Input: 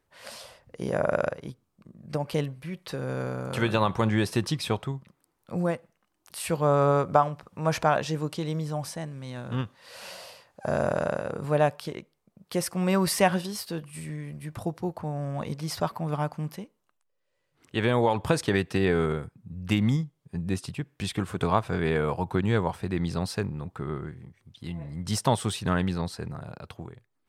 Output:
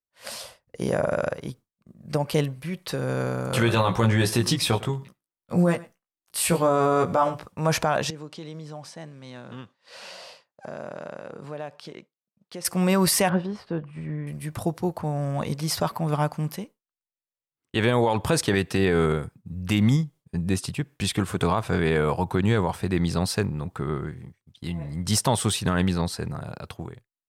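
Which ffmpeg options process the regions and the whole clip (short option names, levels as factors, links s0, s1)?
-filter_complex "[0:a]asettb=1/sr,asplit=3[s0][s1][s2];[s0]atrim=end=3.514[s3];[s1]atrim=start=3.51:end=7.46,asetpts=PTS-STARTPTS,afade=t=in:d=0.004:c=qsin,afade=t=out:st=3.946:d=0.004:c=qsin,asplit=2[s4][s5];[s5]adelay=17,volume=0.708[s6];[s4][s6]amix=inputs=2:normalize=0,atrim=end_sample=174195,aecho=1:1:103:0.0891,atrim=end_sample=174195[s7];[s2]atrim=start=7.456[s8];[s3][s7]acrossfade=d=0.004:c1=hsin:c2=qsin[s9];[s9][s8]acrossfade=d=0.004:c1=qsin:c2=hsin,asettb=1/sr,asplit=3[s10][s11][s12];[s10]atrim=end=8.104[s13];[s11]atrim=start=8.1:end=12.65,asetpts=PTS-STARTPTS,afade=t=in:d=0.004:c=qsin,afade=t=out:st=4.546:d=0.004:c=qsin,acompressor=threshold=0.00891:ratio=3:attack=3.2:release=140:knee=1:detection=peak,acrusher=bits=9:mode=log:mix=0:aa=0.000001,highpass=160,lowpass=5900[s14];[s12]atrim=start=12.646[s15];[s13][s14]acrossfade=d=0.004:c1=hsin:c2=qsin[s16];[s16][s15]acrossfade=d=0.004:c1=qsin:c2=hsin,asettb=1/sr,asplit=3[s17][s18][s19];[s17]atrim=end=13.294[s20];[s18]atrim=start=13.29:end=14.27,asetpts=PTS-STARTPTS,afade=t=in:d=0.004:c=qsin,afade=t=out:st=0.976:d=0.004:c=qsin,lowpass=1500,acompressor=mode=upward:threshold=0.00631:ratio=2.5:attack=3.2:release=140:knee=2.83:detection=peak[s21];[s19]atrim=start=14.266[s22];[s20][s21]acrossfade=d=0.004:c1=hsin:c2=qsin[s23];[s23][s22]acrossfade=d=0.004:c1=qsin:c2=hsin,agate=range=0.0224:threshold=0.00708:ratio=3:detection=peak,highshelf=f=5100:g=5.5,alimiter=limit=0.158:level=0:latency=1:release=30,volume=1.68"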